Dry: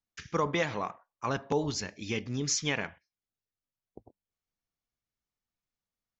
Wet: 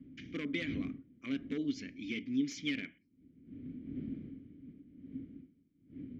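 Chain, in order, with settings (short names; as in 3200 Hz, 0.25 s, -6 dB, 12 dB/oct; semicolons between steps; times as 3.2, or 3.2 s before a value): one-sided fold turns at -22.5 dBFS; wind noise 130 Hz -37 dBFS; vowel filter i; gain +6.5 dB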